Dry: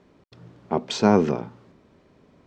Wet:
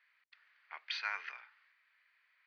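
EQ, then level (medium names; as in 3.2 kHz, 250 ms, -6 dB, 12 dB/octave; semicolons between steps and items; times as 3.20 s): ladder high-pass 1.8 kHz, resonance 35%; rippled Chebyshev low-pass 6.3 kHz, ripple 9 dB; distance through air 360 m; +12.0 dB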